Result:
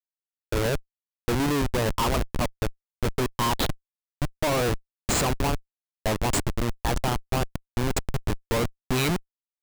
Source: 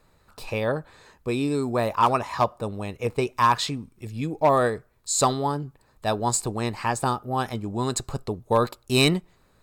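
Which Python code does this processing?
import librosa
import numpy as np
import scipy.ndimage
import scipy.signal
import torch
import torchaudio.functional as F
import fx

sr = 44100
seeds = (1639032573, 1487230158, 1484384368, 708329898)

y = x + 10.0 ** (-22.5 / 20.0) * np.pad(x, (int(926 * sr / 1000.0), 0))[:len(x)]
y = fx.schmitt(y, sr, flips_db=-23.0)
y = y * librosa.db_to_amplitude(2.5)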